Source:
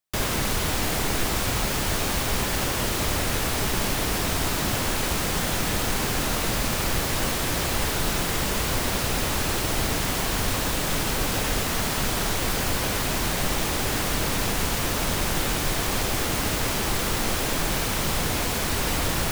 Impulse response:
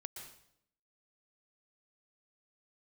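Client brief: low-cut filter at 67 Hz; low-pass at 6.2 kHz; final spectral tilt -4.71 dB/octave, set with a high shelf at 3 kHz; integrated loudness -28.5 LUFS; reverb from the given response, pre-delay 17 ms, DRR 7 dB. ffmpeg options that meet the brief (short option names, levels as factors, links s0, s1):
-filter_complex "[0:a]highpass=67,lowpass=6200,highshelf=f=3000:g=-8,asplit=2[s0][s1];[1:a]atrim=start_sample=2205,adelay=17[s2];[s1][s2]afir=irnorm=-1:irlink=0,volume=0.668[s3];[s0][s3]amix=inputs=2:normalize=0,volume=0.891"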